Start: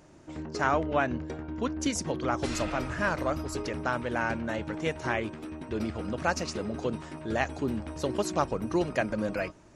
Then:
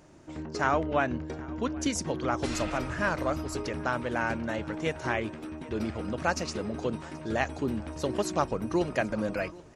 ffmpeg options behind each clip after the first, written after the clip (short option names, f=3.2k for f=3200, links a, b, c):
-af "aecho=1:1:779|1558|2337:0.0794|0.0357|0.0161"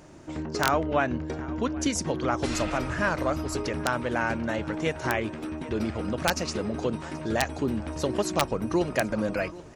-filter_complex "[0:a]asplit=2[a][b];[b]acompressor=threshold=-36dB:ratio=4,volume=-0.5dB[c];[a][c]amix=inputs=2:normalize=0,aeval=exprs='(mod(3.55*val(0)+1,2)-1)/3.55':c=same"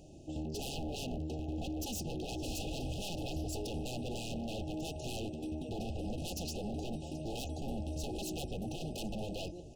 -af "aeval=exprs='0.0376*(abs(mod(val(0)/0.0376+3,4)-2)-1)':c=same,lowshelf=f=90:g=8.5,afftfilt=real='re*(1-between(b*sr/4096,860,2500))':imag='im*(1-between(b*sr/4096,860,2500))':win_size=4096:overlap=0.75,volume=-6dB"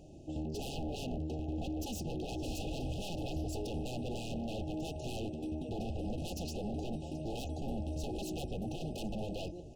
-af "highshelf=f=2.8k:g=-6,volume=1dB"